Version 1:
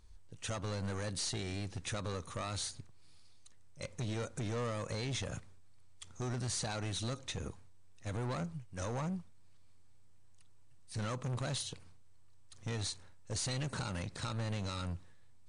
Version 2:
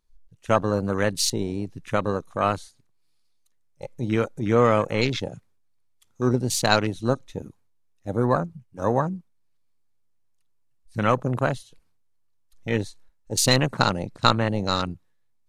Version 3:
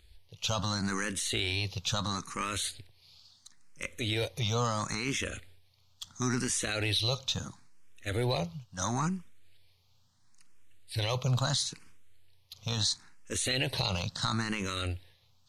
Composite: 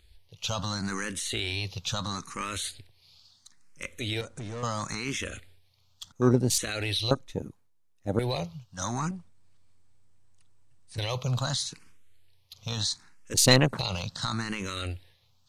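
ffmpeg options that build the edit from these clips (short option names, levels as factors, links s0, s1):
-filter_complex "[0:a]asplit=2[s0][s1];[1:a]asplit=3[s2][s3][s4];[2:a]asplit=6[s5][s6][s7][s8][s9][s10];[s5]atrim=end=4.212[s11];[s0]atrim=start=4.208:end=4.632[s12];[s6]atrim=start=4.628:end=6.122[s13];[s2]atrim=start=6.118:end=6.582[s14];[s7]atrim=start=6.578:end=7.112[s15];[s3]atrim=start=7.108:end=8.192[s16];[s8]atrim=start=8.188:end=9.112[s17];[s1]atrim=start=9.108:end=10.982[s18];[s9]atrim=start=10.978:end=13.342[s19];[s4]atrim=start=13.338:end=13.792[s20];[s10]atrim=start=13.788[s21];[s11][s12]acrossfade=d=0.004:c1=hsin:c2=hsin[s22];[s22][s13]acrossfade=d=0.004:c1=hsin:c2=hsin[s23];[s23][s14]acrossfade=d=0.004:c1=hsin:c2=hsin[s24];[s24][s15]acrossfade=d=0.004:c1=hsin:c2=hsin[s25];[s25][s16]acrossfade=d=0.004:c1=hsin:c2=hsin[s26];[s26][s17]acrossfade=d=0.004:c1=hsin:c2=hsin[s27];[s27][s18]acrossfade=d=0.004:c1=hsin:c2=hsin[s28];[s28][s19]acrossfade=d=0.004:c1=hsin:c2=hsin[s29];[s29][s20]acrossfade=d=0.004:c1=hsin:c2=hsin[s30];[s30][s21]acrossfade=d=0.004:c1=hsin:c2=hsin"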